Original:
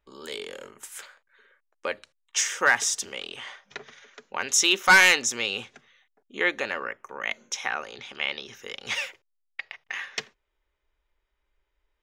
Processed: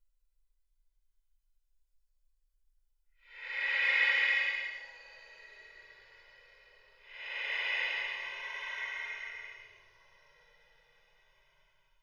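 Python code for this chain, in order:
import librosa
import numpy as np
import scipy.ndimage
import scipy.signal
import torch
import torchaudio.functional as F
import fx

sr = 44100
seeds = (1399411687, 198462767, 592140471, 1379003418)

y = fx.paulstretch(x, sr, seeds[0], factor=32.0, window_s=0.05, from_s=9.47)
y = y + 0.92 * np.pad(y, (int(2.0 * sr / 1000.0), 0))[:len(y)]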